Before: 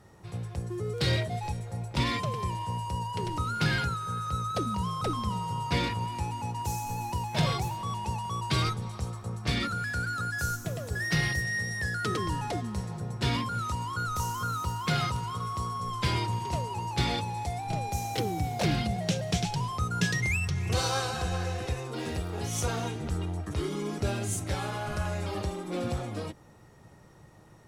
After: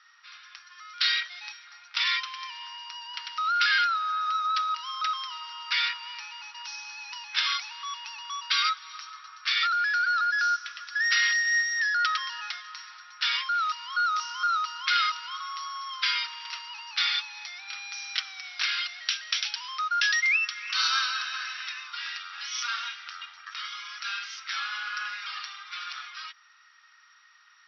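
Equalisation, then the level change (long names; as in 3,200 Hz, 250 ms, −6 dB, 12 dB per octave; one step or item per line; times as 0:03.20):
elliptic high-pass filter 1,300 Hz, stop band 60 dB
Chebyshev low-pass filter 5,700 Hz, order 8
+9.0 dB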